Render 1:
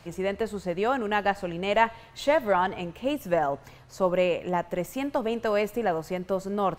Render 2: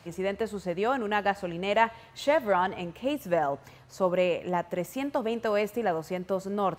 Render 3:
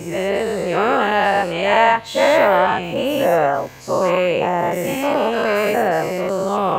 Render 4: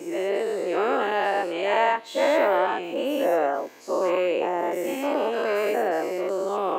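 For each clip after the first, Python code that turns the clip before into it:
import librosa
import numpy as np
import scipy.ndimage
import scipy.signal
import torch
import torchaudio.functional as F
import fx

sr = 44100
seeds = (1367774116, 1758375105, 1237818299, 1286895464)

y1 = scipy.signal.sosfilt(scipy.signal.butter(2, 68.0, 'highpass', fs=sr, output='sos'), x)
y1 = y1 * 10.0 ** (-1.5 / 20.0)
y2 = fx.spec_dilate(y1, sr, span_ms=240)
y2 = y2 * 10.0 ** (4.0 / 20.0)
y3 = fx.ladder_highpass(y2, sr, hz=270.0, resonance_pct=45)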